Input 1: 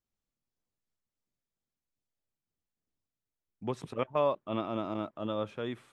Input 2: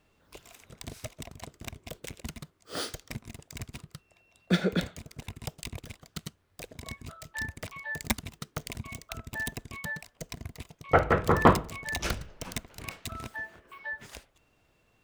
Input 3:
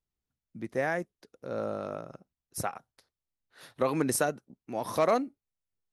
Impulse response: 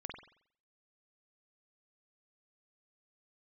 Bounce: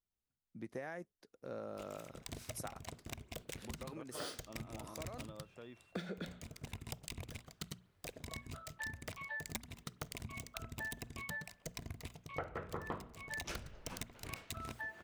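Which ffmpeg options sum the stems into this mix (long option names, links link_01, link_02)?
-filter_complex "[0:a]acompressor=threshold=-35dB:ratio=6,volume=-13dB,asplit=2[link_01][link_02];[1:a]bandreject=frequency=60:width_type=h:width=6,bandreject=frequency=120:width_type=h:width=6,bandreject=frequency=180:width_type=h:width=6,bandreject=frequency=240:width_type=h:width=6,adelay=1450,volume=-4dB,asplit=2[link_03][link_04];[link_04]volume=-17dB[link_05];[2:a]acompressor=threshold=-26dB:ratio=6,volume=-7dB[link_06];[link_02]apad=whole_len=261435[link_07];[link_06][link_07]sidechaincompress=threshold=-59dB:ratio=4:attack=16:release=897[link_08];[3:a]atrim=start_sample=2205[link_09];[link_05][link_09]afir=irnorm=-1:irlink=0[link_10];[link_01][link_03][link_08][link_10]amix=inputs=4:normalize=0,acompressor=threshold=-40dB:ratio=8"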